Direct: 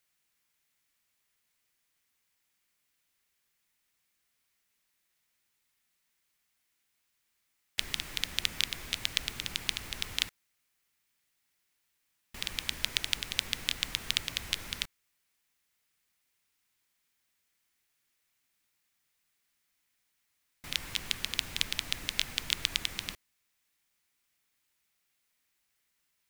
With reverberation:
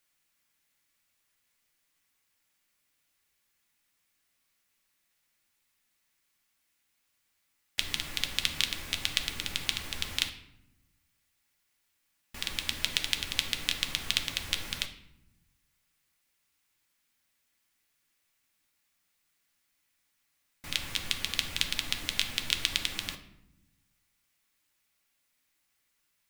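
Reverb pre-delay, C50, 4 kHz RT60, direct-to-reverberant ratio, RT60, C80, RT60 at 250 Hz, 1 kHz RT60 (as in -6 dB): 3 ms, 11.0 dB, 0.55 s, 5.0 dB, 0.85 s, 13.5 dB, 1.4 s, 0.75 s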